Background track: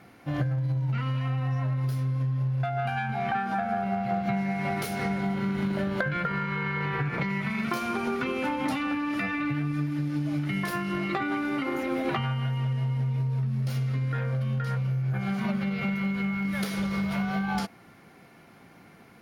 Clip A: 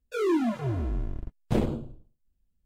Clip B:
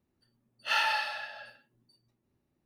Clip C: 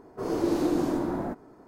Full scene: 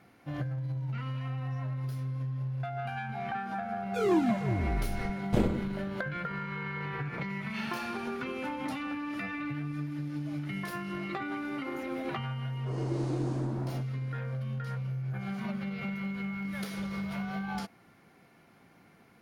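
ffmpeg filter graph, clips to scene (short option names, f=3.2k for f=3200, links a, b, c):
-filter_complex "[0:a]volume=-7dB[a];[2:a]alimiter=limit=-20dB:level=0:latency=1:release=71[b];[3:a]aresample=22050,aresample=44100[c];[1:a]atrim=end=2.65,asetpts=PTS-STARTPTS,volume=-1.5dB,afade=t=in:d=0.004:c=hsin,afade=t=out:st=2.646:d=0.004:c=hsin,adelay=3820[d];[b]atrim=end=2.65,asetpts=PTS-STARTPTS,volume=-12.5dB,afade=t=in:d=0.004:c=hsin,afade=t=out:st=2.646:d=0.004:c=hsin,adelay=6860[e];[c]atrim=end=1.67,asetpts=PTS-STARTPTS,volume=-9dB,afade=t=in:d=0.004:c=hsin,afade=t=out:st=1.666:d=0.004:c=hsin,adelay=12480[f];[a][d][e][f]amix=inputs=4:normalize=0"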